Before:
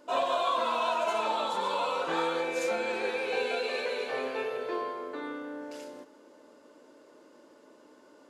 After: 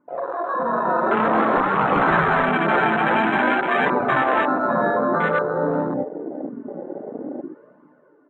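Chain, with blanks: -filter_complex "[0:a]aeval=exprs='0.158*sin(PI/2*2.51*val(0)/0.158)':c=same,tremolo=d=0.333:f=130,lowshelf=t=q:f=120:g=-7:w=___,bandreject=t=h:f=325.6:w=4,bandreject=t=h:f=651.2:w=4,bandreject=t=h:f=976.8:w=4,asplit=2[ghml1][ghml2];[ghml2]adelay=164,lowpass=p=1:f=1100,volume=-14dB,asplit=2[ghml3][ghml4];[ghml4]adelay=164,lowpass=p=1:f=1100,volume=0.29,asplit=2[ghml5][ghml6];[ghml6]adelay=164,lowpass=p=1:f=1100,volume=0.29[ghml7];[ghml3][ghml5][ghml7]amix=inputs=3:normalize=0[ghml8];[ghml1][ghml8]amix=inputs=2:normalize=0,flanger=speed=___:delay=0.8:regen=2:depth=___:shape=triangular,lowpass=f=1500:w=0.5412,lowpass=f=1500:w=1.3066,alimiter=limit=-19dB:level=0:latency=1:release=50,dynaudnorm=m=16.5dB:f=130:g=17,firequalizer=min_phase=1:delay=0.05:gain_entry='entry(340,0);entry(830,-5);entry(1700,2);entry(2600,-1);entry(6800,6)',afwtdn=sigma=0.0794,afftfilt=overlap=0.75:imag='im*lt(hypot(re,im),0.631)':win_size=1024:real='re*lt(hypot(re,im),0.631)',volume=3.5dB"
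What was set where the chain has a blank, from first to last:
3, 0.51, 5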